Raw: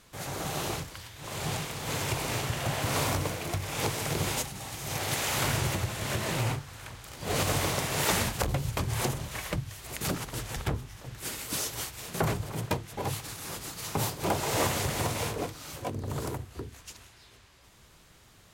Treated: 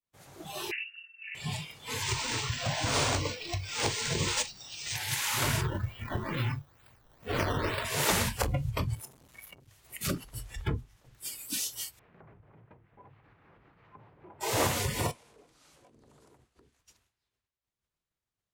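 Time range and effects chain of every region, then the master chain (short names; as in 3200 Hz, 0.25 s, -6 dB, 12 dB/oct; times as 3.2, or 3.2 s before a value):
0.71–1.35 inverted band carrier 2800 Hz + steep high-pass 1400 Hz 72 dB/oct
2.02–4.96 tone controls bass -1 dB, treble +7 dB + decimation joined by straight lines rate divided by 3×
5.61–7.85 self-modulated delay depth 0.55 ms + decimation with a swept rate 13× 2.2 Hz
8.95–9.68 high shelf 9300 Hz +6 dB + compressor 2.5:1, threshold -32 dBFS + core saturation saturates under 1100 Hz
11.99–14.41 LPF 2200 Hz 24 dB/oct + compressor 2.5:1, threshold -39 dBFS
15.11–16.79 LPF 11000 Hz 24 dB/oct + bell 96 Hz -13.5 dB 0.78 oct + compressor 10:1, threshold -39 dBFS
whole clip: expander -45 dBFS; spectral noise reduction 17 dB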